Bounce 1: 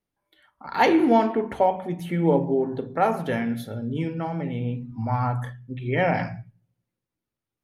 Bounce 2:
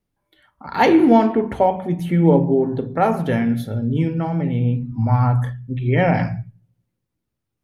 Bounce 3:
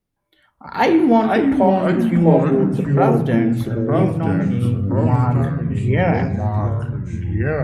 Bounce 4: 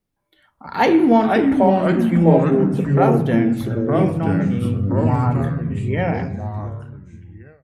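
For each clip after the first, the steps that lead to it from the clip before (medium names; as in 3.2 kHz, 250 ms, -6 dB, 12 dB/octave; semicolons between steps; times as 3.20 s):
bass shelf 240 Hz +9.5 dB; trim +2.5 dB
ever faster or slower copies 352 ms, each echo -3 st, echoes 3; trim -1 dB
fade out at the end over 2.41 s; hum notches 60/120 Hz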